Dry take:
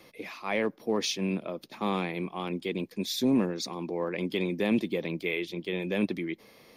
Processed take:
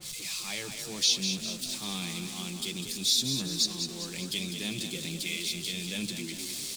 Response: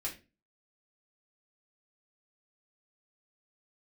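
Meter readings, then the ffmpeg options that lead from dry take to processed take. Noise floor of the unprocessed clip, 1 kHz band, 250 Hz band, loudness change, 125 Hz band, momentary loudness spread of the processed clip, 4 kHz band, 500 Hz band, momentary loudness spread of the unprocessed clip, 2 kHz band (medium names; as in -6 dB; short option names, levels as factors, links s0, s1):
-56 dBFS, -11.5 dB, -8.0 dB, +0.5 dB, -2.5 dB, 10 LU, +9.0 dB, -13.5 dB, 7 LU, -3.0 dB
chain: -filter_complex "[0:a]aeval=exprs='val(0)+0.5*0.015*sgn(val(0))':c=same,equalizer=f=125:t=o:w=1:g=6,equalizer=f=250:t=o:w=1:g=-8,equalizer=f=500:t=o:w=1:g=-12,equalizer=f=1000:t=o:w=1:g=-8,equalizer=f=2000:t=o:w=1:g=-7,equalizer=f=4000:t=o:w=1:g=6,equalizer=f=8000:t=o:w=1:g=12,acrossover=split=5000[s0][s1];[s1]alimiter=limit=0.0708:level=0:latency=1:release=473[s2];[s0][s2]amix=inputs=2:normalize=0,flanger=delay=5.6:depth=1.1:regen=-44:speed=0.78:shape=sinusoidal,asplit=7[s3][s4][s5][s6][s7][s8][s9];[s4]adelay=200,afreqshift=31,volume=0.422[s10];[s5]adelay=400,afreqshift=62,volume=0.224[s11];[s6]adelay=600,afreqshift=93,volume=0.119[s12];[s7]adelay=800,afreqshift=124,volume=0.0631[s13];[s8]adelay=1000,afreqshift=155,volume=0.0331[s14];[s9]adelay=1200,afreqshift=186,volume=0.0176[s15];[s3][s10][s11][s12][s13][s14][s15]amix=inputs=7:normalize=0,adynamicequalizer=threshold=0.00316:dfrequency=2100:dqfactor=0.7:tfrequency=2100:tqfactor=0.7:attack=5:release=100:ratio=0.375:range=2.5:mode=boostabove:tftype=highshelf"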